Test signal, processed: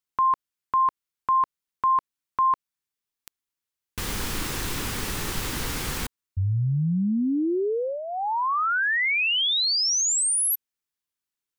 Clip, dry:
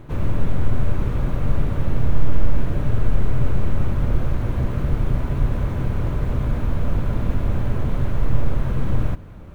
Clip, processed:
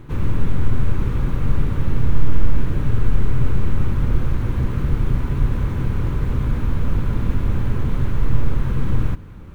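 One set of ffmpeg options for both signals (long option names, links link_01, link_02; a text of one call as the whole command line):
ffmpeg -i in.wav -af "equalizer=frequency=640:width=3:gain=-10.5,volume=1.5dB" out.wav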